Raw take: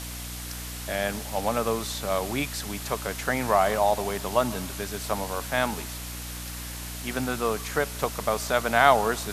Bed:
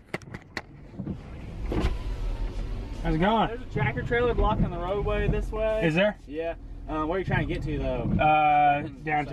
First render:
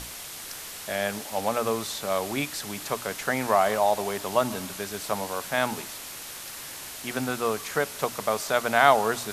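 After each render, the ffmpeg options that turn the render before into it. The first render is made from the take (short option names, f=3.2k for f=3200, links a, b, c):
-af "bandreject=f=60:t=h:w=6,bandreject=f=120:t=h:w=6,bandreject=f=180:t=h:w=6,bandreject=f=240:t=h:w=6,bandreject=f=300:t=h:w=6"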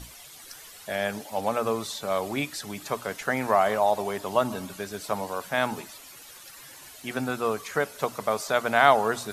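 -af "afftdn=nr=12:nf=-40"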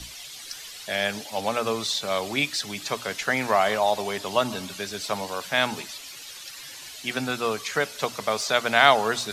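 -filter_complex "[0:a]acrossover=split=110|1400|5300[a][b][c][d];[c]crystalizer=i=6.5:c=0[e];[d]asoftclip=type=tanh:threshold=-38dB[f];[a][b][e][f]amix=inputs=4:normalize=0"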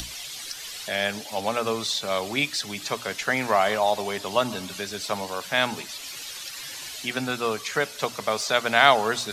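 -af "acompressor=mode=upward:threshold=-30dB:ratio=2.5"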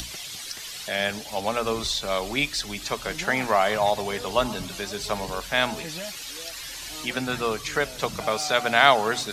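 -filter_complex "[1:a]volume=-14.5dB[a];[0:a][a]amix=inputs=2:normalize=0"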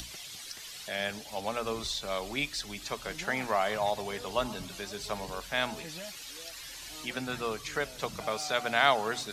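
-af "volume=-7.5dB"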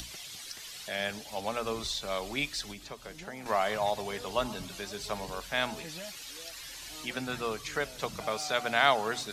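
-filter_complex "[0:a]asettb=1/sr,asplit=3[a][b][c];[a]atrim=end=2.714[d];[b]atrim=start=2.71:end=3.46,asetpts=PTS-STARTPTS,afade=t=in:d=0.004:c=qsin,afade=t=out:st=0.746:d=0.004:c=qsin,acrossover=split=780|4800[e][f][g];[e]acompressor=threshold=-43dB:ratio=4[h];[f]acompressor=threshold=-48dB:ratio=4[i];[g]acompressor=threshold=-56dB:ratio=4[j];[h][i][j]amix=inputs=3:normalize=0[k];[c]atrim=start=3.456[l];[d][k]acrossfade=d=0.004:c1=hsin:c2=qsin[m];[m][l]acrossfade=d=0.004:c1=qsin:c2=hsin"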